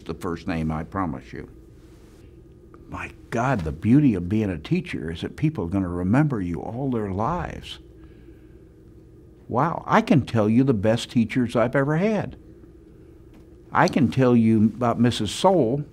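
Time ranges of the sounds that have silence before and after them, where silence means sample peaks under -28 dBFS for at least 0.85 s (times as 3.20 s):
2.93–7.73 s
9.50–12.28 s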